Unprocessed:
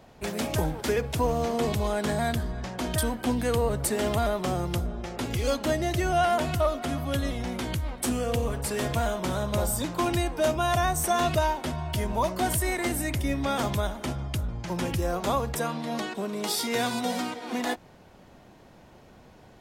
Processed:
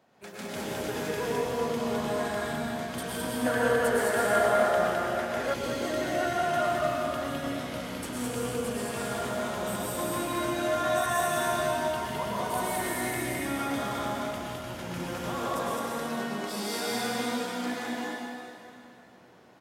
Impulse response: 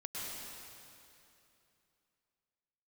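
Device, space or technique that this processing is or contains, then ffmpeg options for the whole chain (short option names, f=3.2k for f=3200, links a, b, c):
stadium PA: -filter_complex "[0:a]highpass=170,equalizer=f=1.5k:t=o:w=0.77:g=4,aecho=1:1:177.8|209.9:0.355|0.794[a];[1:a]atrim=start_sample=2205[b];[a][b]afir=irnorm=-1:irlink=0,asettb=1/sr,asplit=3[c][d][e];[c]atrim=end=3.464[f];[d]atrim=start=3.46:end=5.54,asetpts=PTS-STARTPTS,afade=t=in:d=0.004:c=qsin,afade=t=out:st=2.076:d=0.004:c=qsin,equalizer=f=160:t=o:w=0.67:g=-5,equalizer=f=630:t=o:w=0.67:g=9,equalizer=f=1.6k:t=o:w=0.67:g=11[g];[e]atrim=start=5.536[h];[f][g]acrossfade=d=0.004:c1=hsin:c2=qsin[i];[i][h]acrossfade=d=0.004:c1=qsin:c2=hsin,volume=-6.5dB"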